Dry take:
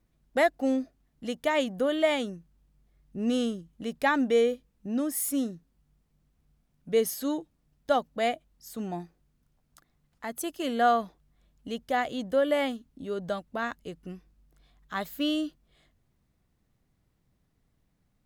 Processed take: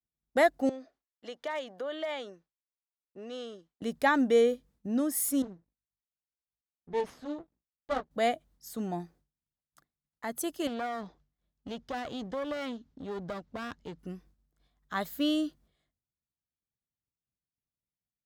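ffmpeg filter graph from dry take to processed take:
ffmpeg -i in.wav -filter_complex "[0:a]asettb=1/sr,asplit=3[link_01][link_02][link_03];[link_01]atrim=end=0.694[link_04];[link_02]atrim=start=0.69:end=3.82,asetpts=PTS-STARTPTS,afade=type=in:duration=0.004:curve=qsin,afade=type=out:start_time=3.126:duration=0.004:curve=qsin,acompressor=threshold=-30dB:ratio=4:attack=3.2:release=140:knee=1:detection=peak,acrossover=split=380 5900:gain=0.0794 1 0.0891[link_05][link_06][link_07];[link_05][link_06][link_07]amix=inputs=3:normalize=0,asoftclip=type=hard:threshold=-27dB[link_08];[link_03]atrim=start=3.816[link_09];[link_04][link_08]acrossfade=duration=0.004:curve1=hsin:curve2=qsin[link_10];[link_10][link_09]acrossfade=duration=0.004:curve1=qsin:curve2=hsin,asettb=1/sr,asplit=3[link_11][link_12][link_13];[link_11]atrim=end=5.424[link_14];[link_12]atrim=start=5.42:end=8.11,asetpts=PTS-STARTPTS,afade=type=in:duration=0.004:curve=qsin,afade=type=out:start_time=2.686:duration=0.004:curve=qsin,flanger=delay=15.5:depth=2.3:speed=1.2,aeval=exprs='max(val(0),0)':channel_layout=same,adynamicsmooth=sensitivity=5.5:basefreq=3300[link_15];[link_13]atrim=start=8.106[link_16];[link_14][link_15]acrossfade=duration=0.004:curve1=hsin:curve2=qsin[link_17];[link_17][link_16]acrossfade=duration=0.004:curve1=qsin:curve2=hsin,asettb=1/sr,asplit=3[link_18][link_19][link_20];[link_18]atrim=end=10.674[link_21];[link_19]atrim=start=10.67:end=13.99,asetpts=PTS-STARTPTS,afade=type=in:duration=0.004:curve=qsin,afade=type=out:start_time=3.316:duration=0.004:curve=qsin,lowpass=frequency=6200:width=0.5412,lowpass=frequency=6200:width=1.3066,acompressor=threshold=-29dB:ratio=3:attack=3.2:release=140:knee=1:detection=peak,aeval=exprs='clip(val(0),-1,0.00708)':channel_layout=same[link_22];[link_20]atrim=start=13.986[link_23];[link_21][link_22]acrossfade=duration=0.004:curve1=hsin:curve2=qsin[link_24];[link_24][link_23]acrossfade=duration=0.004:curve1=qsin:curve2=hsin,agate=range=-33dB:threshold=-54dB:ratio=3:detection=peak,highpass=45,equalizer=frequency=2600:width=3.2:gain=-4.5" out.wav

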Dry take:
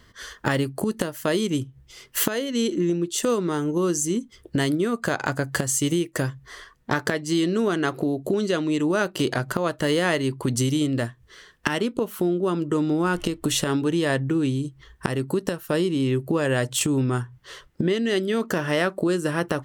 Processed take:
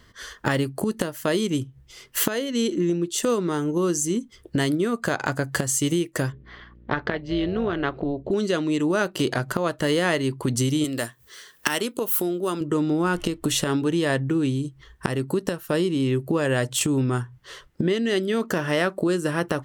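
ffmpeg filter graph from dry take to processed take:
ffmpeg -i in.wav -filter_complex "[0:a]asettb=1/sr,asplit=3[link_01][link_02][link_03];[link_01]atrim=end=6.324[link_04];[link_02]atrim=start=6.32:end=8.31,asetpts=PTS-STARTPTS,afade=type=in:duration=0.004:curve=qsin,afade=type=out:start_time=1.986:duration=0.004:curve=qsin,aeval=exprs='val(0)+0.00501*(sin(2*PI*60*n/s)+sin(2*PI*2*60*n/s)/2+sin(2*PI*3*60*n/s)/3+sin(2*PI*4*60*n/s)/4+sin(2*PI*5*60*n/s)/5)':channel_layout=same,lowpass=frequency=3700:width=0.5412,lowpass=frequency=3700:width=1.3066,tremolo=f=280:d=0.571[link_05];[link_03]atrim=start=8.306[link_06];[link_04][link_05]acrossfade=duration=0.004:curve1=hsin:curve2=qsin[link_07];[link_07][link_06]acrossfade=duration=0.004:curve1=qsin:curve2=hsin,asettb=1/sr,asplit=3[link_08][link_09][link_10];[link_08]atrim=end=10.844[link_11];[link_09]atrim=start=10.84:end=12.61,asetpts=PTS-STARTPTS,afade=type=in:duration=0.004:curve=qsin,afade=type=out:start_time=1.766:duration=0.004:curve=qsin,aemphasis=mode=production:type=bsi,acompressor=mode=upward:threshold=-47dB:ratio=2.5:attack=3.2:release=140:knee=2.83:detection=peak[link_12];[link_10]atrim=start=12.606[link_13];[link_11][link_12]acrossfade=duration=0.004:curve1=hsin:curve2=qsin[link_14];[link_14][link_13]acrossfade=duration=0.004:curve1=qsin:curve2=hsin" out.wav

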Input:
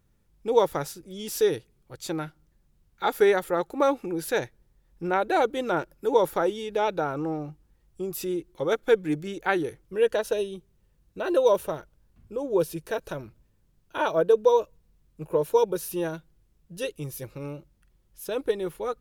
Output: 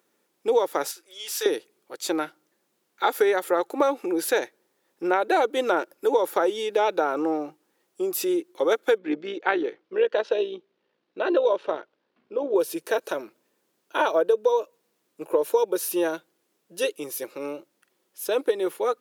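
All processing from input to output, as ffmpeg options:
ffmpeg -i in.wav -filter_complex "[0:a]asettb=1/sr,asplit=3[link_01][link_02][link_03];[link_01]atrim=end=0.914[link_04];[link_02]atrim=start=0.91:end=1.46,asetpts=PTS-STARTPTS,afade=type=in:duration=0.004:curve=qsin,afade=type=out:start_time=0.546:duration=0.004:curve=qsin,highpass=1100,highshelf=frequency=5600:gain=-5,asplit=2[link_05][link_06];[link_06]adelay=31,volume=-13.5dB[link_07];[link_05][link_07]amix=inputs=2:normalize=0,atrim=end_sample=24255[link_08];[link_03]atrim=start=1.456[link_09];[link_04][link_08]acrossfade=duration=0.004:curve1=hsin:curve2=qsin[link_10];[link_10][link_09]acrossfade=duration=0.004:curve1=qsin:curve2=hsin,asettb=1/sr,asplit=3[link_11][link_12][link_13];[link_11]atrim=end=8.984[link_14];[link_12]atrim=start=8.98:end=12.56,asetpts=PTS-STARTPTS,afade=type=in:duration=0.004:curve=qsin,afade=type=out:start_time=3.576:duration=0.004:curve=qsin,lowpass=frequency=4300:width=0.5412,lowpass=frequency=4300:width=1.3066,tremolo=f=59:d=0.462[link_15];[link_13]atrim=start=12.556[link_16];[link_14][link_15]acrossfade=duration=0.004:curve1=hsin:curve2=qsin[link_17];[link_17][link_16]acrossfade=duration=0.004:curve1=qsin:curve2=hsin,highpass=frequency=300:width=0.5412,highpass=frequency=300:width=1.3066,acompressor=threshold=-24dB:ratio=6,volume=6.5dB" out.wav

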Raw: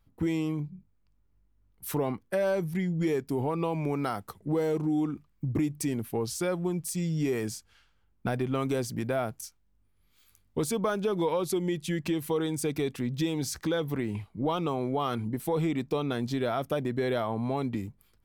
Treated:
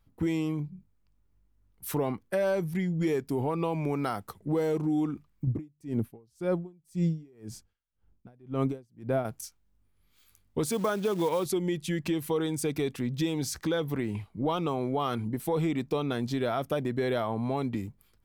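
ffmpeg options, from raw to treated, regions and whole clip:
ffmpeg -i in.wav -filter_complex "[0:a]asettb=1/sr,asplit=3[link_01][link_02][link_03];[link_01]atrim=end=5.474[link_04];[link_02]atrim=start=5.47:end=9.25,asetpts=PTS-STARTPTS,afade=type=in:duration=0.004:curve=qsin,afade=type=out:start_time=3.776:duration=0.004:curve=qsin,tiltshelf=frequency=890:gain=6,aeval=exprs='val(0)*pow(10,-34*(0.5-0.5*cos(2*PI*1.9*n/s))/20)':channel_layout=same[link_05];[link_03]atrim=start=9.246[link_06];[link_04][link_05]acrossfade=duration=0.004:curve1=hsin:curve2=qsin[link_07];[link_07][link_06]acrossfade=duration=0.004:curve1=qsin:curve2=hsin,asettb=1/sr,asplit=3[link_08][link_09][link_10];[link_08]atrim=end=10.664[link_11];[link_09]atrim=start=10.66:end=11.46,asetpts=PTS-STARTPTS,afade=type=in:duration=0.004:curve=qsin,afade=type=out:start_time=0.796:duration=0.004:curve=qsin,highpass=88,acrusher=bits=5:mode=log:mix=0:aa=0.000001[link_12];[link_10]atrim=start=11.456[link_13];[link_11][link_12]acrossfade=duration=0.004:curve1=hsin:curve2=qsin[link_14];[link_14][link_13]acrossfade=duration=0.004:curve1=qsin:curve2=hsin" out.wav

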